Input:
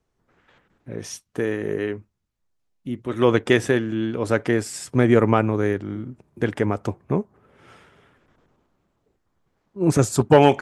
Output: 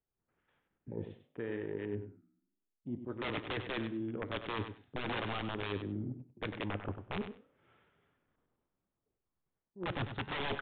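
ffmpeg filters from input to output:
-af "aresample=11025,aeval=exprs='(mod(4.22*val(0)+1,2)-1)/4.22':c=same,aresample=44100,afwtdn=0.02,areverse,acompressor=threshold=-34dB:ratio=5,areverse,flanger=delay=7.1:depth=7.7:regen=-89:speed=0.66:shape=triangular,aecho=1:1:97|194:0.355|0.0568,aresample=8000,aresample=44100,volume=2dB"

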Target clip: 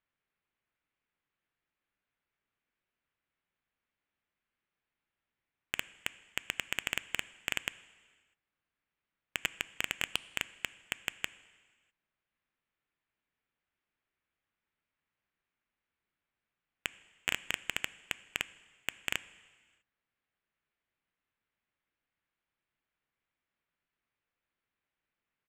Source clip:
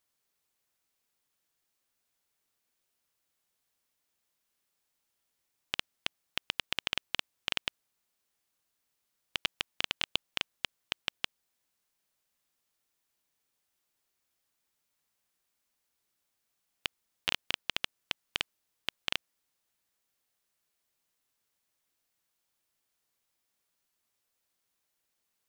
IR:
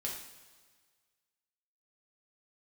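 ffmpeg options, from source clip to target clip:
-filter_complex "[0:a]firequalizer=gain_entry='entry(500,0);entry(1900,9);entry(6800,-29);entry(10000,-24)':delay=0.05:min_phase=1,asplit=2[a][b];[b]adynamicsmooth=sensitivity=4.5:basefreq=560,volume=0dB[c];[a][c]amix=inputs=2:normalize=0,asoftclip=type=hard:threshold=-11.5dB,equalizer=f=1.9k:t=o:w=0.28:g=-3.5,aeval=exprs='0.316*(cos(1*acos(clip(val(0)/0.316,-1,1)))-cos(1*PI/2))+0.00708*(cos(7*acos(clip(val(0)/0.316,-1,1)))-cos(7*PI/2))':c=same,asplit=2[d][e];[1:a]atrim=start_sample=2205,afade=t=out:st=0.39:d=0.01,atrim=end_sample=17640,asetrate=22932,aresample=44100[f];[e][f]afir=irnorm=-1:irlink=0,volume=-20.5dB[g];[d][g]amix=inputs=2:normalize=0,volume=-4.5dB"

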